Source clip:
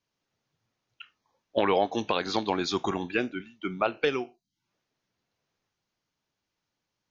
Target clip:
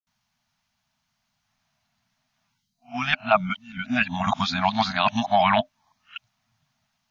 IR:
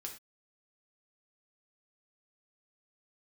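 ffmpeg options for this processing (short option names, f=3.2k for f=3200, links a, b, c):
-filter_complex "[0:a]areverse,afftfilt=real='re*(1-between(b*sr/4096,260,610))':imag='im*(1-between(b*sr/4096,260,610))':win_size=4096:overlap=0.75,acrossover=split=4300[a][b];[b]acompressor=threshold=-52dB:ratio=4:attack=1:release=60[c];[a][c]amix=inputs=2:normalize=0,volume=8.5dB"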